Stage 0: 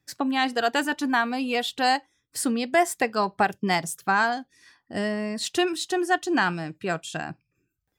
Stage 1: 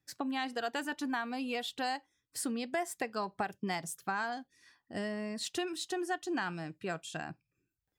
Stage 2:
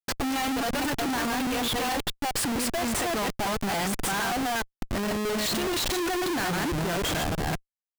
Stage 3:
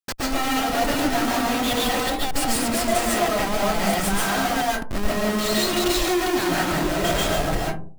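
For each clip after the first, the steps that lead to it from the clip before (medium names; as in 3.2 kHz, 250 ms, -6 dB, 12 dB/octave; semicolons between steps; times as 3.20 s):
compression 3:1, threshold -24 dBFS, peak gain reduction 7 dB; trim -8 dB
chunks repeated in reverse 210 ms, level -0.5 dB; Schmitt trigger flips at -44 dBFS; upward expansion 1.5:1, over -47 dBFS; trim +8.5 dB
reverberation RT60 0.45 s, pre-delay 100 ms, DRR -4 dB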